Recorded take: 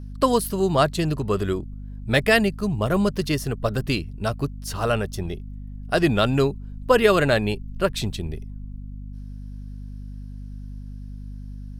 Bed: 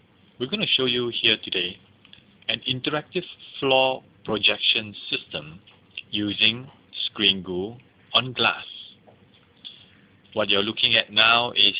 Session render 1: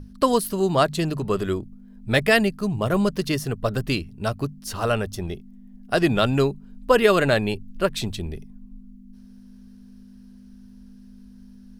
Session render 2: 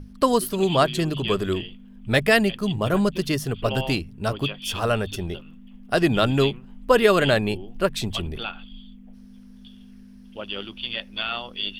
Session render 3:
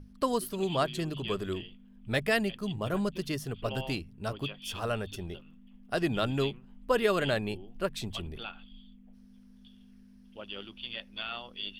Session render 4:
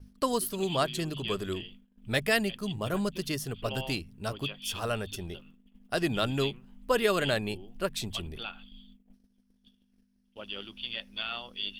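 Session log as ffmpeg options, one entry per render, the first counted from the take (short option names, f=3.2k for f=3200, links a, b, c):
-af "bandreject=f=50:t=h:w=6,bandreject=f=100:t=h:w=6,bandreject=f=150:t=h:w=6"
-filter_complex "[1:a]volume=-11.5dB[a];[0:a][a]amix=inputs=2:normalize=0"
-af "volume=-9.5dB"
-af "agate=range=-16dB:threshold=-52dB:ratio=16:detection=peak,highshelf=f=3.5k:g=7"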